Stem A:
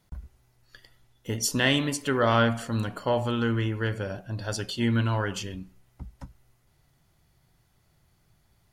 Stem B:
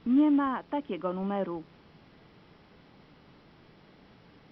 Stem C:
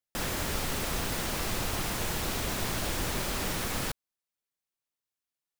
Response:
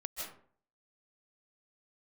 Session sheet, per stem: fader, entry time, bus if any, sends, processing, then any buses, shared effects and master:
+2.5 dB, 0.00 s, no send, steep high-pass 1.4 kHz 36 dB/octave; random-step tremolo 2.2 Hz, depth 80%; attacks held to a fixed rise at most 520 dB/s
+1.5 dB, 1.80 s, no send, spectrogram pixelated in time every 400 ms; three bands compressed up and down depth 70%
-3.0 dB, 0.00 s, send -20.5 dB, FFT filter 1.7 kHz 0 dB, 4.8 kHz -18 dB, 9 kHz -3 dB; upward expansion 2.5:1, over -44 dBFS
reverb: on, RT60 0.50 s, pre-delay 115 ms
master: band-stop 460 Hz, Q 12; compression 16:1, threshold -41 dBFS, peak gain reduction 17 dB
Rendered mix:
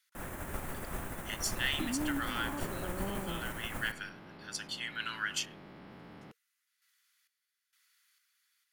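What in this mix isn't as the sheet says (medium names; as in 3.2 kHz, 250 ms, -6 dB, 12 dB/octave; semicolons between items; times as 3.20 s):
stem B +1.5 dB -> -5.5 dB; master: missing compression 16:1, threshold -41 dBFS, peak gain reduction 17 dB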